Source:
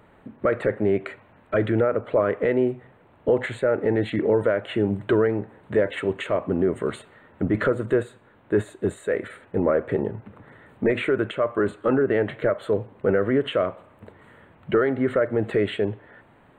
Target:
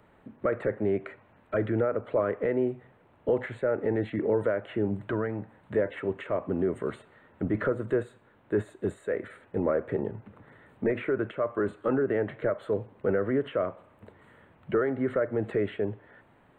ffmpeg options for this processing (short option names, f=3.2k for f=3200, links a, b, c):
-filter_complex "[0:a]asettb=1/sr,asplit=3[a][b][c];[a]atrim=end=5.074[d];[b]atrim=start=5.07:end=5.73,asetpts=PTS-STARTPTS,afade=t=in:d=0.004:c=qsin,afade=t=out:st=0.656:d=0.004:c=qsin,equalizer=f=400:w=3.2:g=-9.5[e];[c]atrim=start=5.726[f];[d][e]acrossfade=d=0.004:c1=hsin:c2=qsin[g];[g][f]acrossfade=d=0.004:c1=qsin:c2=hsin,acrossover=split=260|2300[h][i][j];[j]acompressor=threshold=-52dB:ratio=6[k];[h][i][k]amix=inputs=3:normalize=0,volume=-5.5dB"